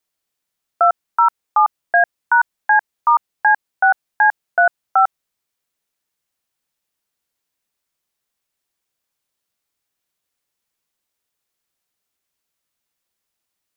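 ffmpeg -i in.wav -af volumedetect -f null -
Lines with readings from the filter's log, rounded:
mean_volume: -22.1 dB
max_volume: -5.4 dB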